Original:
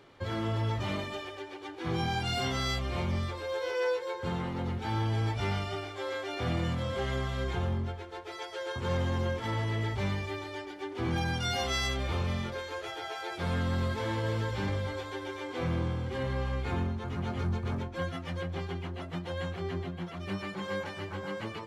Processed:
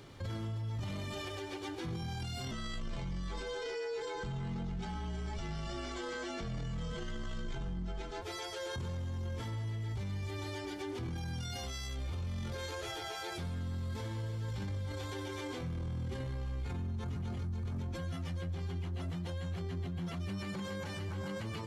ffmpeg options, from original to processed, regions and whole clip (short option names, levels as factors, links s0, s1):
-filter_complex "[0:a]asettb=1/sr,asplit=3[s0][s1][s2];[s0]atrim=end=2.514[s3];[s1]atrim=start=2.51:end=8.22,asetpts=PTS-STARTPTS,afade=t=in:d=0.004:c=qsin,afade=t=out:st=5.706:d=0.004:c=qsin,aecho=1:1:4.4:0.58,atrim=end_sample=251811,afreqshift=-39,lowpass=f=8100:w=0.5412,lowpass=f=8100:w=1.3066[s4];[s2]atrim=start=8.216[s5];[s3][s4]acrossfade=d=0.004:c1=hsin:c2=qsin[s6];[s6][s5]acrossfade=d=0.004:c1=qsin:c2=hsin,bass=f=250:g=11,treble=f=4000:g=10,alimiter=level_in=2.66:limit=0.0631:level=0:latency=1:release=19,volume=0.376"